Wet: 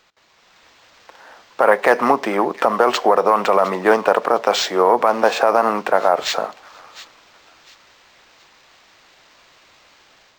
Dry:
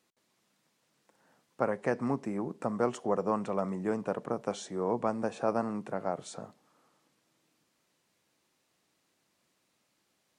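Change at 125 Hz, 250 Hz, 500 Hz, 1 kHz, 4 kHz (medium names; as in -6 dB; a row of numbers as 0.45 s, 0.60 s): no reading, +8.0 dB, +16.0 dB, +20.0 dB, +26.0 dB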